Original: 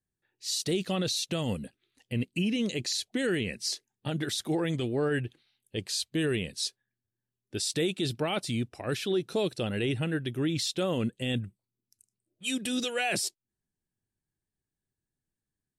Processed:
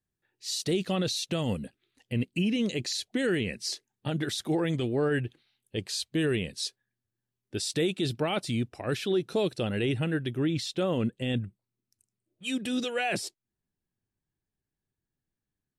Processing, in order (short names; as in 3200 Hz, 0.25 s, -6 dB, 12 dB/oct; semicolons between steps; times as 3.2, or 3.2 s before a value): high shelf 4000 Hz -4.5 dB, from 10.34 s -10 dB; gain +1.5 dB